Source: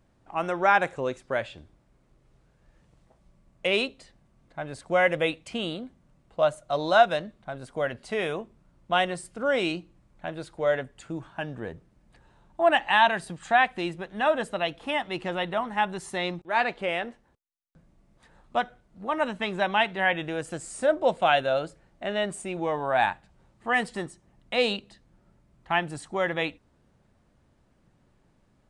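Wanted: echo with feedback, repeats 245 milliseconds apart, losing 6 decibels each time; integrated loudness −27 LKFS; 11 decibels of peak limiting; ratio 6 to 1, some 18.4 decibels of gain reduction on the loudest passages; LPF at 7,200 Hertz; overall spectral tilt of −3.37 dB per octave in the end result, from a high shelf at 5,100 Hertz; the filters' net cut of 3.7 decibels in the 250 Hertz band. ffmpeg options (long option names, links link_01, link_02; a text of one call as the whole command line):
ffmpeg -i in.wav -af "lowpass=7200,equalizer=frequency=250:width_type=o:gain=-5.5,highshelf=frequency=5100:gain=-8,acompressor=threshold=-34dB:ratio=6,alimiter=level_in=7.5dB:limit=-24dB:level=0:latency=1,volume=-7.5dB,aecho=1:1:245|490|735|980|1225|1470:0.501|0.251|0.125|0.0626|0.0313|0.0157,volume=15dB" out.wav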